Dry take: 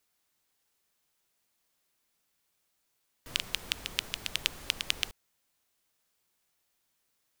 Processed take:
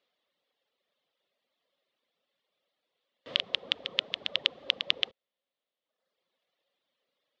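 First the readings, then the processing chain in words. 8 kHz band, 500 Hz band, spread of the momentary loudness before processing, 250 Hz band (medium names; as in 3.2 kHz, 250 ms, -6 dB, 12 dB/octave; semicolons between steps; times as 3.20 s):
under -15 dB, +7.5 dB, 3 LU, -1.5 dB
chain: reverb removal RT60 1.2 s; cabinet simulation 250–3600 Hz, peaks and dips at 340 Hz -4 dB, 540 Hz +10 dB, 900 Hz -6 dB, 1.5 kHz -8 dB, 2.4 kHz -5 dB, 3.5 kHz +4 dB; trim +5.5 dB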